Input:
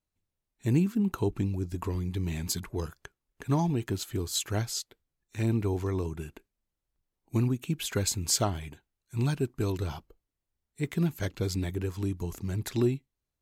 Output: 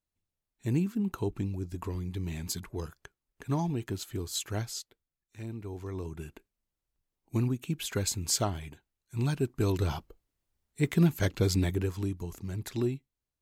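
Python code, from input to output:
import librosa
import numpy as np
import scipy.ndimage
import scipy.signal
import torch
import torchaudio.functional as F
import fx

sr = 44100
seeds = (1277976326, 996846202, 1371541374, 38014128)

y = fx.gain(x, sr, db=fx.line((4.63, -3.5), (5.55, -13.0), (6.27, -2.0), (9.2, -2.0), (9.92, 4.0), (11.65, 4.0), (12.26, -4.0)))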